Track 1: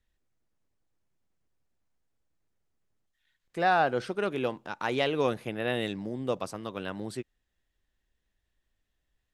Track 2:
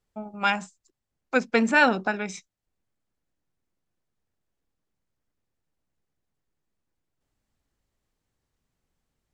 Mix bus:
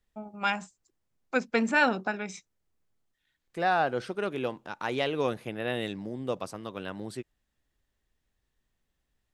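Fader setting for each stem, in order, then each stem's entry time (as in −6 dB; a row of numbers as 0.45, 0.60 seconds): −1.5, −4.5 decibels; 0.00, 0.00 seconds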